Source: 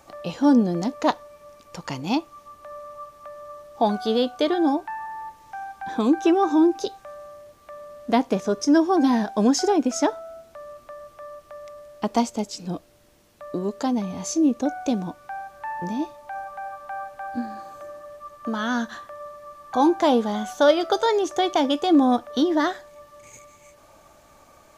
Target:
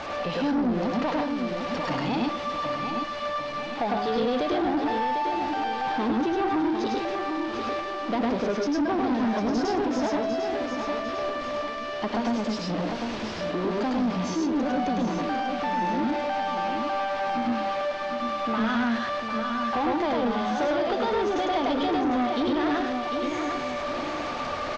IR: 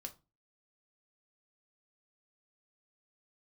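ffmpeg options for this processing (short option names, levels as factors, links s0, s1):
-filter_complex "[0:a]aeval=exprs='val(0)+0.5*0.0447*sgn(val(0))':c=same,lowshelf=f=190:g=-8.5,acompressor=threshold=0.0891:ratio=6,aemphasis=mode=reproduction:type=50kf,aecho=1:1:750|1500|2250|3000|3750:0.376|0.165|0.0728|0.032|0.0141,asplit=2[s0][s1];[1:a]atrim=start_sample=2205,adelay=103[s2];[s1][s2]afir=irnorm=-1:irlink=0,volume=1.68[s3];[s0][s3]amix=inputs=2:normalize=0,asoftclip=type=tanh:threshold=0.0944,lowpass=f=5200:w=0.5412,lowpass=f=5200:w=1.3066"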